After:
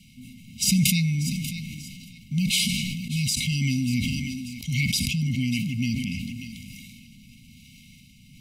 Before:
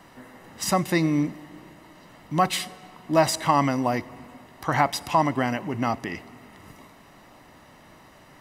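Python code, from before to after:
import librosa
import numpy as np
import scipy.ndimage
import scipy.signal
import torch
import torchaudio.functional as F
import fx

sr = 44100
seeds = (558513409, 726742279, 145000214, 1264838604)

y = fx.rotary(x, sr, hz=1.0)
y = fx.brickwall_bandstop(y, sr, low_hz=260.0, high_hz=2100.0)
y = fx.echo_thinned(y, sr, ms=590, feedback_pct=28, hz=230.0, wet_db=-14.5)
y = fx.sustainer(y, sr, db_per_s=23.0)
y = F.gain(torch.from_numpy(y), 6.5).numpy()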